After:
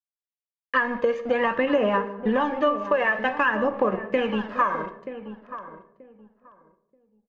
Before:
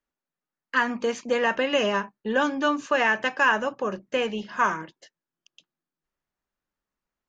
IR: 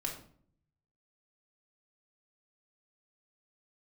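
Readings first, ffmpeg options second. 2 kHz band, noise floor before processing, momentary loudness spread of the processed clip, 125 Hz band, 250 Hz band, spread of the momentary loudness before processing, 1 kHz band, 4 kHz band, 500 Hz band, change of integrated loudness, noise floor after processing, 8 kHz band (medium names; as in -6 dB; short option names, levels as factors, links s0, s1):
-1.5 dB, under -85 dBFS, 16 LU, +4.0 dB, +2.5 dB, 7 LU, +1.0 dB, -6.5 dB, +2.5 dB, +1.0 dB, under -85 dBFS, no reading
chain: -filter_complex "[0:a]bandreject=f=1500:w=9.9,bandreject=f=136.1:t=h:w=4,bandreject=f=272.2:t=h:w=4,bandreject=f=408.3:t=h:w=4,bandreject=f=544.4:t=h:w=4,bandreject=f=680.5:t=h:w=4,bandreject=f=816.6:t=h:w=4,bandreject=f=952.7:t=h:w=4,bandreject=f=1088.8:t=h:w=4,bandreject=f=1224.9:t=h:w=4,bandreject=f=1361:t=h:w=4,bandreject=f=1497.1:t=h:w=4,bandreject=f=1633.2:t=h:w=4,bandreject=f=1769.3:t=h:w=4,bandreject=f=1905.4:t=h:w=4,bandreject=f=2041.5:t=h:w=4,bandreject=f=2177.6:t=h:w=4,bandreject=f=2313.7:t=h:w=4,bandreject=f=2449.8:t=h:w=4,bandreject=f=2585.9:t=h:w=4,bandreject=f=2722:t=h:w=4,bandreject=f=2858.1:t=h:w=4,bandreject=f=2994.2:t=h:w=4,bandreject=f=3130.3:t=h:w=4,bandreject=f=3266.4:t=h:w=4,bandreject=f=3402.5:t=h:w=4,bandreject=f=3538.6:t=h:w=4,bandreject=f=3674.7:t=h:w=4,bandreject=f=3810.8:t=h:w=4,bandreject=f=3946.9:t=h:w=4,bandreject=f=4083:t=h:w=4,bandreject=f=4219.1:t=h:w=4,bandreject=f=4355.2:t=h:w=4,bandreject=f=4491.3:t=h:w=4,bandreject=f=4627.4:t=h:w=4,bandreject=f=4763.5:t=h:w=4,bandreject=f=4899.6:t=h:w=4,bandreject=f=5035.7:t=h:w=4,bandreject=f=5171.8:t=h:w=4,aeval=exprs='sgn(val(0))*max(abs(val(0))-0.00531,0)':c=same,aphaser=in_gain=1:out_gain=1:delay=1.9:decay=0.52:speed=0.52:type=sinusoidal,lowpass=1900,asplit=2[s0][s1];[s1]lowshelf=f=280:g=-9.5[s2];[1:a]atrim=start_sample=2205,asetrate=34839,aresample=44100[s3];[s2][s3]afir=irnorm=-1:irlink=0,volume=0.316[s4];[s0][s4]amix=inputs=2:normalize=0,acompressor=threshold=0.0562:ratio=6,asplit=2[s5][s6];[s6]adelay=931,lowpass=f=1000:p=1,volume=0.282,asplit=2[s7][s8];[s8]adelay=931,lowpass=f=1000:p=1,volume=0.22,asplit=2[s9][s10];[s10]adelay=931,lowpass=f=1000:p=1,volume=0.22[s11];[s5][s7][s9][s11]amix=inputs=4:normalize=0,volume=2"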